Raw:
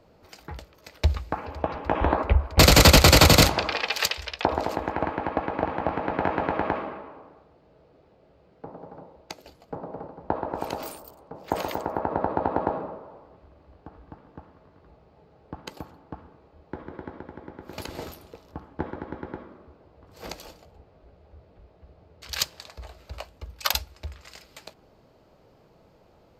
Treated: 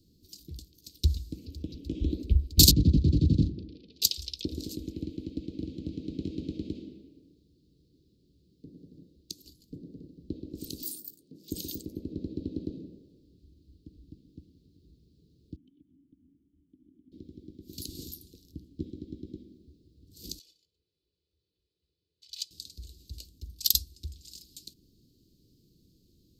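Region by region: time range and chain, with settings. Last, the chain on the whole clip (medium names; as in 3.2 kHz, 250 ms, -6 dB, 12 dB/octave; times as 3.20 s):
2.71–4.02 s: band-pass filter 150 Hz, Q 0.51 + distance through air 170 m
10.82–11.51 s: high-pass 160 Hz + doubling 19 ms -13 dB
15.56–17.12 s: cascade formant filter i + compression 3:1, threshold -55 dBFS
20.39–22.51 s: band-pass filter 1.9 kHz, Q 1.7 + comb 2 ms, depth 61%
whole clip: elliptic band-stop 320–3900 Hz, stop band 50 dB; treble shelf 4.9 kHz +9.5 dB; trim -2.5 dB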